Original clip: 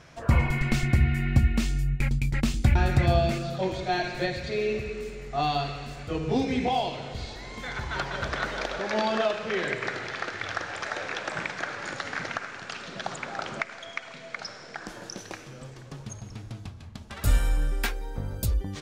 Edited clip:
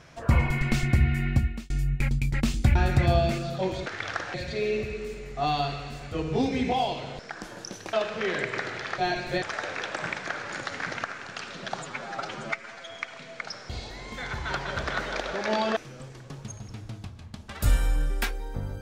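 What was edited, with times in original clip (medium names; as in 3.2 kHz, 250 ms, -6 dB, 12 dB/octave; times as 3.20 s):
1.27–1.70 s: fade out
3.86–4.30 s: swap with 10.27–10.75 s
7.15–9.22 s: swap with 14.64–15.38 s
13.13–13.90 s: stretch 1.5×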